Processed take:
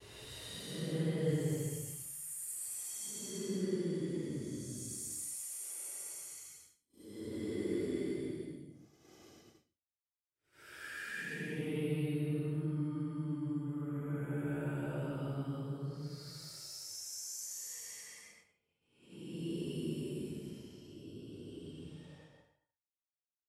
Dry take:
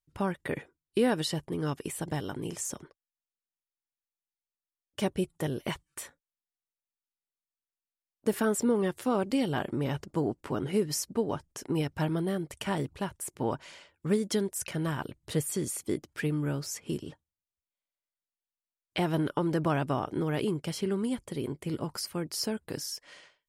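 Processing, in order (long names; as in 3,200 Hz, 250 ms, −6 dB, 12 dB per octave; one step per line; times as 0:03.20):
extreme stretch with random phases 12×, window 0.10 s, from 0:15.27
downward expander −47 dBFS
level −8 dB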